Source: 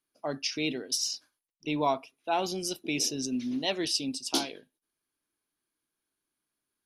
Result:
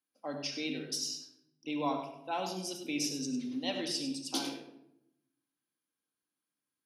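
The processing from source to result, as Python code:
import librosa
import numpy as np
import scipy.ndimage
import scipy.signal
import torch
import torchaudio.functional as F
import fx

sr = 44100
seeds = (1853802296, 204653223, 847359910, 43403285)

y = scipy.signal.sosfilt(scipy.signal.butter(2, 110.0, 'highpass', fs=sr, output='sos'), x)
y = y + 10.0 ** (-10.0 / 20.0) * np.pad(y, (int(99 * sr / 1000.0), 0))[:len(y)]
y = fx.room_shoebox(y, sr, seeds[0], volume_m3=2300.0, walls='furnished', distance_m=2.1)
y = y * librosa.db_to_amplitude(-7.5)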